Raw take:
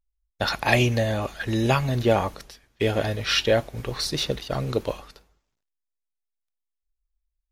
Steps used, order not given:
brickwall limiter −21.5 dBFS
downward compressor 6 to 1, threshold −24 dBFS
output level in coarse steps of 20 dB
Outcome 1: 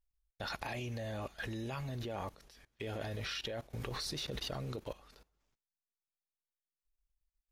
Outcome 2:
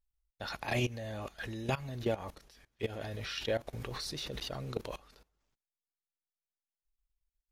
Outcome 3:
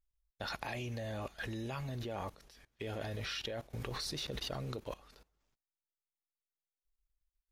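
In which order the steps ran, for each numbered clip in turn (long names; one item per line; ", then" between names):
downward compressor, then brickwall limiter, then output level in coarse steps
output level in coarse steps, then downward compressor, then brickwall limiter
downward compressor, then output level in coarse steps, then brickwall limiter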